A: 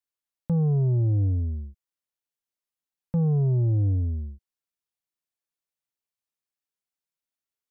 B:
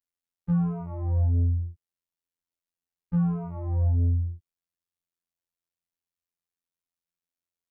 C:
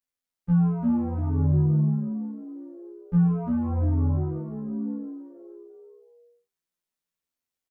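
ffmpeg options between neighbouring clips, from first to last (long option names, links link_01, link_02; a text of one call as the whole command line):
ffmpeg -i in.wav -af "aeval=exprs='0.106*(cos(1*acos(clip(val(0)/0.106,-1,1)))-cos(1*PI/2))+0.0188*(cos(5*acos(clip(val(0)/0.106,-1,1)))-cos(5*PI/2))+0.00668*(cos(7*acos(clip(val(0)/0.106,-1,1)))-cos(7*PI/2))':channel_layout=same,lowshelf=frequency=270:gain=8,afftfilt=real='hypot(re,im)*cos(PI*b)':imag='0':win_size=2048:overlap=0.75,volume=-4dB" out.wav
ffmpeg -i in.wav -filter_complex "[0:a]asplit=7[link_01][link_02][link_03][link_04][link_05][link_06][link_07];[link_02]adelay=344,afreqshift=65,volume=-4dB[link_08];[link_03]adelay=688,afreqshift=130,volume=-10.9dB[link_09];[link_04]adelay=1032,afreqshift=195,volume=-17.9dB[link_10];[link_05]adelay=1376,afreqshift=260,volume=-24.8dB[link_11];[link_06]adelay=1720,afreqshift=325,volume=-31.7dB[link_12];[link_07]adelay=2064,afreqshift=390,volume=-38.7dB[link_13];[link_01][link_08][link_09][link_10][link_11][link_12][link_13]amix=inputs=7:normalize=0,flanger=delay=15.5:depth=4.1:speed=0.26,volume=5dB" out.wav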